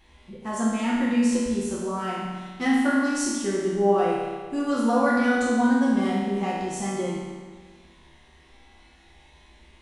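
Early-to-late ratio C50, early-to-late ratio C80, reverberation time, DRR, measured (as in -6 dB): -1.5 dB, 1.0 dB, 1.6 s, -7.5 dB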